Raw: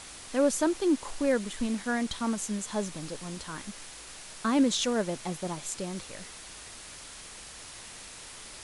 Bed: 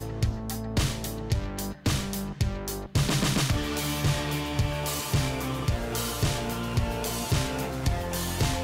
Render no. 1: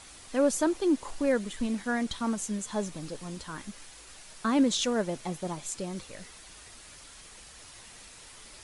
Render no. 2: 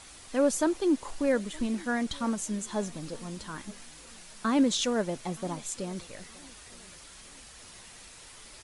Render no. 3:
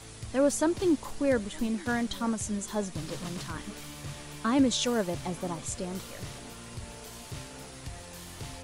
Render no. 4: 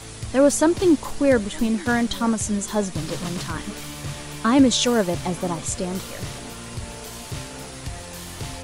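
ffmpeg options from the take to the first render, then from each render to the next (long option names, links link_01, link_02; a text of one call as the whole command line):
ffmpeg -i in.wav -af "afftdn=noise_reduction=6:noise_floor=-46" out.wav
ffmpeg -i in.wav -filter_complex "[0:a]asplit=2[link_01][link_02];[link_02]adelay=920,lowpass=frequency=2000:poles=1,volume=-23.5dB,asplit=2[link_03][link_04];[link_04]adelay=920,lowpass=frequency=2000:poles=1,volume=0.39,asplit=2[link_05][link_06];[link_06]adelay=920,lowpass=frequency=2000:poles=1,volume=0.39[link_07];[link_01][link_03][link_05][link_07]amix=inputs=4:normalize=0" out.wav
ffmpeg -i in.wav -i bed.wav -filter_complex "[1:a]volume=-15.5dB[link_01];[0:a][link_01]amix=inputs=2:normalize=0" out.wav
ffmpeg -i in.wav -af "volume=8.5dB" out.wav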